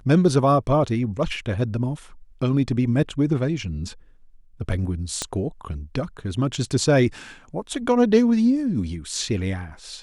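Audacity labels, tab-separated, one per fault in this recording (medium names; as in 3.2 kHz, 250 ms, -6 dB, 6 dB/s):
5.220000	5.220000	pop -11 dBFS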